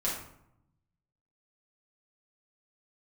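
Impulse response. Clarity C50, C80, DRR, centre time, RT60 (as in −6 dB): 3.0 dB, 7.0 dB, −7.5 dB, 43 ms, 0.75 s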